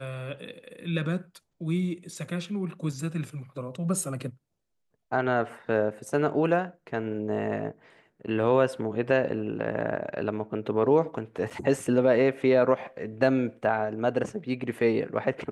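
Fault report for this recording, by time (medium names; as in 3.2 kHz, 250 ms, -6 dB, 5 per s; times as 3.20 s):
11.50–11.51 s: dropout 6.7 ms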